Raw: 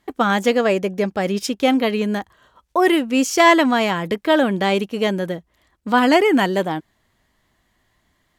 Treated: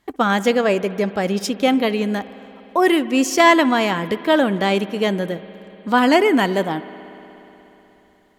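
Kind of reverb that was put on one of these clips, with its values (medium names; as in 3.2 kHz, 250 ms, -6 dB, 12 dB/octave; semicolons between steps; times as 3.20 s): spring tank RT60 3.7 s, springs 60 ms, chirp 25 ms, DRR 15.5 dB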